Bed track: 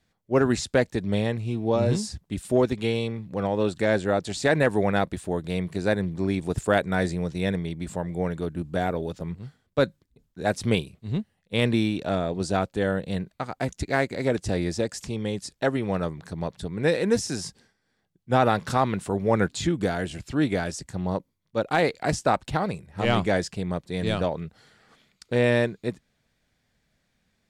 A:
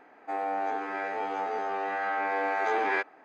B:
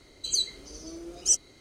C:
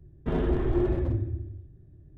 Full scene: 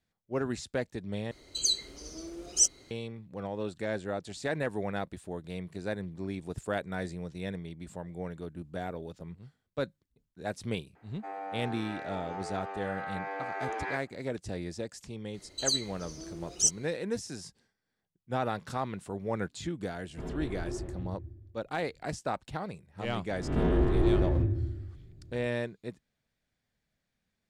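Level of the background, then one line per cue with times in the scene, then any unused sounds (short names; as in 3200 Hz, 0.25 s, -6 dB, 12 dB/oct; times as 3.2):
bed track -11 dB
1.31 replace with B -1 dB
10.95 add A -8.5 dB
15.34 add B -2.5 dB
19.91 add C -12 dB
23.3 add C -1.5 dB + spectral swells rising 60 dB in 0.71 s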